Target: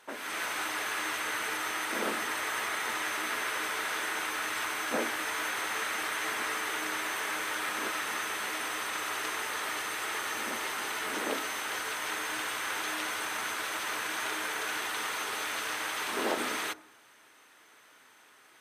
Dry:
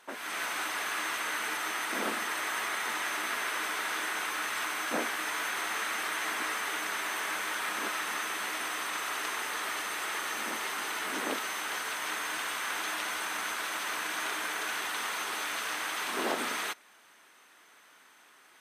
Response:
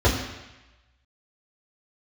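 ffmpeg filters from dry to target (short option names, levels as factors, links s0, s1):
-filter_complex "[0:a]asplit=2[s0][s1];[1:a]atrim=start_sample=2205,asetrate=52920,aresample=44100,lowpass=f=1400:w=0.5412,lowpass=f=1400:w=1.3066[s2];[s1][s2]afir=irnorm=-1:irlink=0,volume=0.0398[s3];[s0][s3]amix=inputs=2:normalize=0"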